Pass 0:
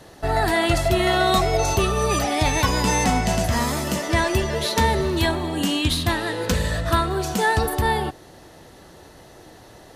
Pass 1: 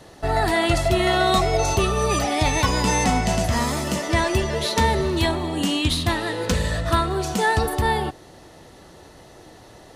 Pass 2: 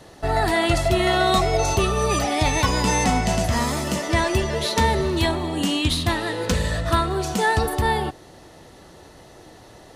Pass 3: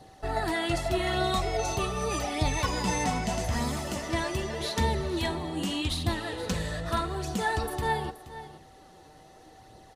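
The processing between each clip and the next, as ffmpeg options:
-af "equalizer=f=13000:t=o:w=0.26:g=-8,bandreject=f=1600:w=17"
-af anull
-af "flanger=delay=0.2:depth=6.5:regen=48:speed=0.82:shape=sinusoidal,aeval=exprs='val(0)+0.00355*sin(2*PI*770*n/s)':c=same,aecho=1:1:476:0.188,volume=0.596"

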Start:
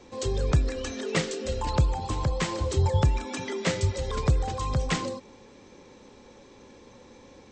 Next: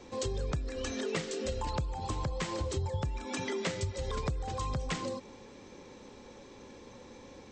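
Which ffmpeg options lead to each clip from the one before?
-af "acompressor=threshold=0.0282:ratio=6"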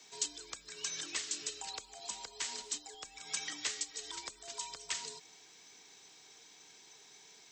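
-af "afreqshift=-96,aderivative,volume=2.37"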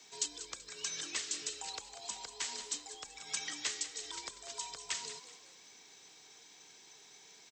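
-filter_complex "[0:a]asplit=5[s0][s1][s2][s3][s4];[s1]adelay=191,afreqshift=53,volume=0.237[s5];[s2]adelay=382,afreqshift=106,volume=0.0923[s6];[s3]adelay=573,afreqshift=159,volume=0.0359[s7];[s4]adelay=764,afreqshift=212,volume=0.0141[s8];[s0][s5][s6][s7][s8]amix=inputs=5:normalize=0"

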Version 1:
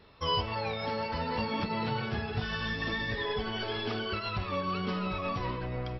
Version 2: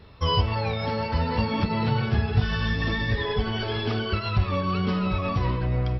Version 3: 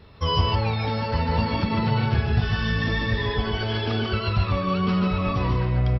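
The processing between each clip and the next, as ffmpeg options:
-af "equalizer=f=71:t=o:w=2.5:g=11,volume=1.58"
-af "aecho=1:1:146:0.668"

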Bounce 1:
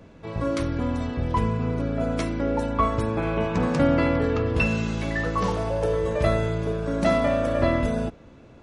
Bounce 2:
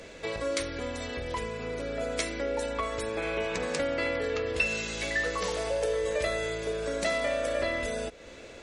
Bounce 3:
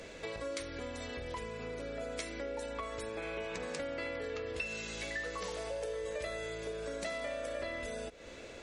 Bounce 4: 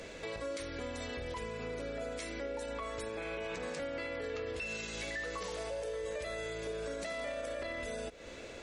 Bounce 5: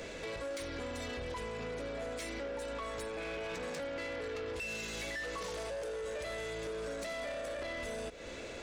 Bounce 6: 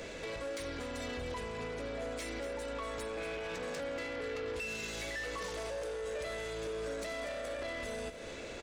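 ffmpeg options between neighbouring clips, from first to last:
-af "highshelf=f=5100:g=8.5,acompressor=threshold=0.0178:ratio=3,equalizer=f=125:t=o:w=1:g=-10,equalizer=f=250:t=o:w=1:g=-4,equalizer=f=500:t=o:w=1:g=9,equalizer=f=1000:t=o:w=1:g=-3,equalizer=f=2000:t=o:w=1:g=10,equalizer=f=4000:t=o:w=1:g=7,equalizer=f=8000:t=o:w=1:g=11"
-af "acompressor=threshold=0.01:ratio=2,volume=0.794"
-af "alimiter=level_in=2.66:limit=0.0631:level=0:latency=1:release=26,volume=0.376,volume=1.19"
-af "asoftclip=type=tanh:threshold=0.01,volume=1.58"
-af "aecho=1:1:238:0.299"

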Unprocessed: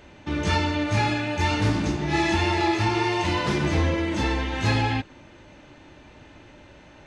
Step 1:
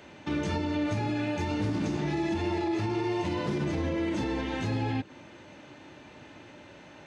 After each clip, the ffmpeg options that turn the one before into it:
-filter_complex "[0:a]highpass=120,acrossover=split=590[s0][s1];[s1]acompressor=threshold=0.0158:ratio=6[s2];[s0][s2]amix=inputs=2:normalize=0,alimiter=limit=0.0841:level=0:latency=1:release=63"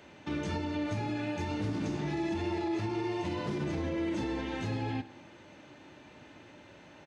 -af "aecho=1:1:66|132|198|264|330|396:0.15|0.0898|0.0539|0.0323|0.0194|0.0116,volume=0.631"

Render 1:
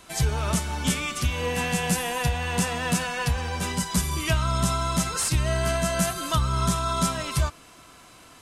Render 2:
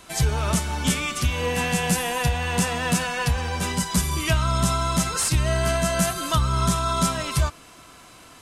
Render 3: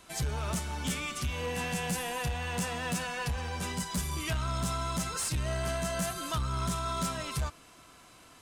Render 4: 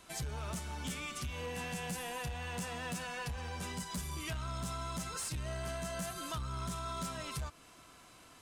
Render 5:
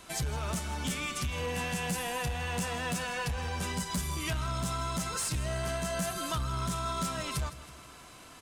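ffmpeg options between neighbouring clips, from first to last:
-af "acontrast=51,volume=0.668"
-af "asoftclip=type=tanh:threshold=0.133,volume=0.398"
-af "acompressor=threshold=0.0126:ratio=2,volume=0.75"
-af "aecho=1:1:160|320|480|640|800:0.158|0.0824|0.0429|0.0223|0.0116,volume=2.11"

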